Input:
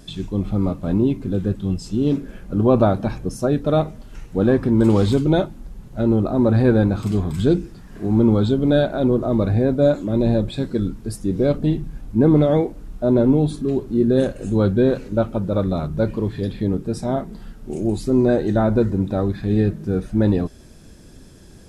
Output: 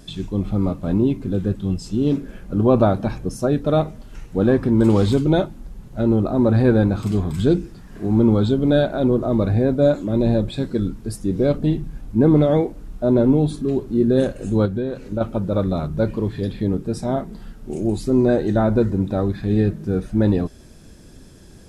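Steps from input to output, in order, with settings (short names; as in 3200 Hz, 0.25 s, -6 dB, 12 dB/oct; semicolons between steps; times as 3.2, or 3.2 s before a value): 14.65–15.21 compressor 6:1, threshold -21 dBFS, peak gain reduction 9.5 dB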